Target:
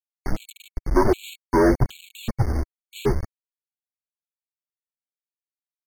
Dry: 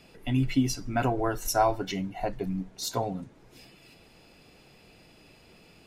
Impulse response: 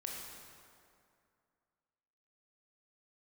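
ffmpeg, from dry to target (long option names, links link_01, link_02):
-filter_complex "[0:a]afftfilt=real='re*gte(hypot(re,im),0.0631)':imag='im*gte(hypot(re,im),0.0631)':win_size=1024:overlap=0.75,acrossover=split=1000[link_01][link_02];[link_01]alimiter=limit=-22dB:level=0:latency=1:release=64[link_03];[link_03][link_02]amix=inputs=2:normalize=0,dynaudnorm=framelen=110:gausssize=5:maxgain=10dB,aresample=11025,asoftclip=type=tanh:threshold=-21.5dB,aresample=44100,highpass=frequency=230:width_type=q:width=0.5412,highpass=frequency=230:width_type=q:width=1.307,lowpass=frequency=2300:width_type=q:width=0.5176,lowpass=frequency=2300:width_type=q:width=0.7071,lowpass=frequency=2300:width_type=q:width=1.932,afreqshift=-270,aeval=exprs='val(0)*gte(abs(val(0)),0.0224)':channel_layout=same,asetrate=37084,aresample=44100,atempo=1.18921,aphaser=in_gain=1:out_gain=1:delay=3.5:decay=0.28:speed=0.54:type=triangular,afftfilt=real='re*gt(sin(2*PI*1.3*pts/sr)*(1-2*mod(floor(b*sr/1024/2200),2)),0)':imag='im*gt(sin(2*PI*1.3*pts/sr)*(1-2*mod(floor(b*sr/1024/2200),2)),0)':win_size=1024:overlap=0.75,volume=9dB"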